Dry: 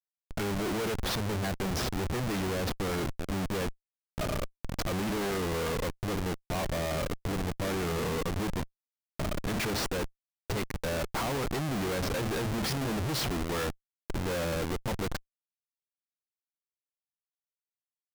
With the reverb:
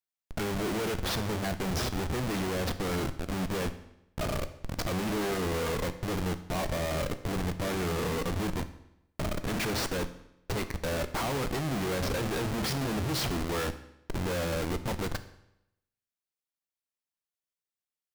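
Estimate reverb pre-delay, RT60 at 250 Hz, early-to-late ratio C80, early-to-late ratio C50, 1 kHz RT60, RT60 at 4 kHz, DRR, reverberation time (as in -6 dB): 12 ms, 0.85 s, 15.5 dB, 13.5 dB, 0.85 s, 0.75 s, 10.0 dB, 0.85 s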